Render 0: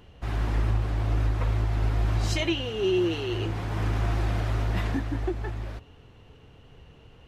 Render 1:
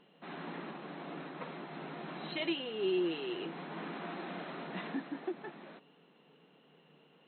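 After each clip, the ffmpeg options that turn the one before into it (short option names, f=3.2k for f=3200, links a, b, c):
-af "afftfilt=real='re*between(b*sr/4096,140,4200)':imag='im*between(b*sr/4096,140,4200)':win_size=4096:overlap=0.75,volume=-7.5dB"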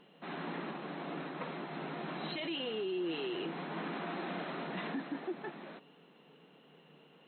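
-af "alimiter=level_in=9dB:limit=-24dB:level=0:latency=1:release=17,volume=-9dB,volume=3dB"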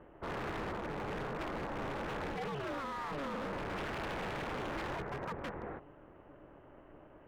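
-af "lowpass=f=1.7k:w=0.5412,lowpass=f=1.7k:w=1.3066,aeval=exprs='0.0106*(abs(mod(val(0)/0.0106+3,4)-2)-1)':c=same,aeval=exprs='val(0)*sin(2*PI*140*n/s)':c=same,volume=8.5dB"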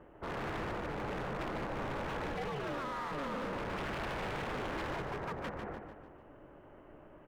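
-af "aecho=1:1:148|296|444|592|740:0.447|0.197|0.0865|0.0381|0.0167"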